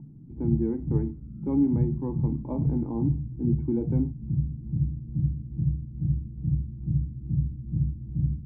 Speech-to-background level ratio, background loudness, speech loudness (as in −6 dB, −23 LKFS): −0.5 dB, −30.0 LKFS, −30.5 LKFS